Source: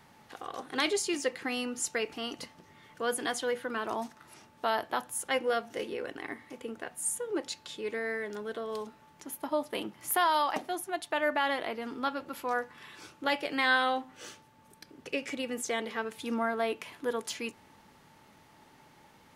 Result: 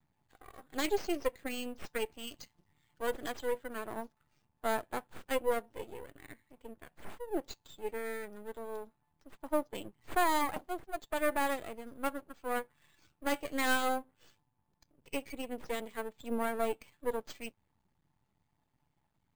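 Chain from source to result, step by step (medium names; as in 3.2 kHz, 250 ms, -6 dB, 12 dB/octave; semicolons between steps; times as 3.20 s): expander on every frequency bin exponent 1.5; half-wave rectifier; 2.27–3.07 s: treble shelf 2.5 kHz +7.5 dB; careless resampling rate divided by 4×, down filtered, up hold; dynamic bell 460 Hz, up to +6 dB, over -48 dBFS, Q 0.73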